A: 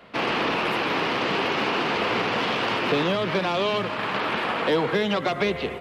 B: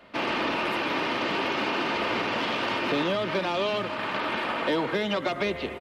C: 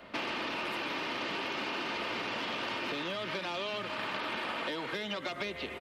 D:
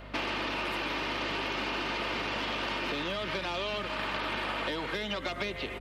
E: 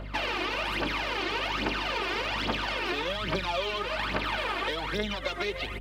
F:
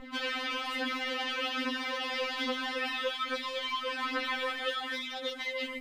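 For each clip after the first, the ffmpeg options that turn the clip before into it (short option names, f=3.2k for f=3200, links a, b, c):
-af "aecho=1:1:3.3:0.34,volume=-3.5dB"
-filter_complex "[0:a]acrossover=split=1300|3100[a][b][c];[a]acompressor=threshold=-41dB:ratio=4[d];[b]acompressor=threshold=-43dB:ratio=4[e];[c]acompressor=threshold=-45dB:ratio=4[f];[d][e][f]amix=inputs=3:normalize=0,volume=1.5dB"
-af "aeval=exprs='val(0)+0.00355*(sin(2*PI*50*n/s)+sin(2*PI*2*50*n/s)/2+sin(2*PI*3*50*n/s)/3+sin(2*PI*4*50*n/s)/4+sin(2*PI*5*50*n/s)/5)':c=same,volume=2.5dB"
-af "aphaser=in_gain=1:out_gain=1:delay=2.9:decay=0.68:speed=1.2:type=triangular"
-af "afftfilt=real='re*3.46*eq(mod(b,12),0)':imag='im*3.46*eq(mod(b,12),0)':win_size=2048:overlap=0.75"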